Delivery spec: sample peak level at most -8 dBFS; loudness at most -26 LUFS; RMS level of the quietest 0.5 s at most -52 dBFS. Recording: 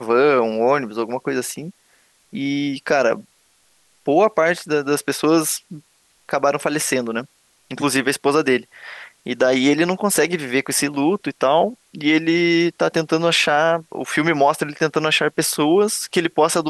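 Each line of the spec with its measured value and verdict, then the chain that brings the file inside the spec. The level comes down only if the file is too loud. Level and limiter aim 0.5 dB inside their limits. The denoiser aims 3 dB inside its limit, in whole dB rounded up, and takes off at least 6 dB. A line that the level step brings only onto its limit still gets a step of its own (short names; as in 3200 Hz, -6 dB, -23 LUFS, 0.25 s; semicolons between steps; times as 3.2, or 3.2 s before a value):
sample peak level -5.0 dBFS: fail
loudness -19.0 LUFS: fail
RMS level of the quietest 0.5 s -59 dBFS: OK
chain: gain -7.5 dB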